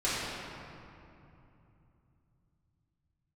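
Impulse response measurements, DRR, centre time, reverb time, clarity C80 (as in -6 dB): -11.0 dB, 0.173 s, 2.9 s, -2.0 dB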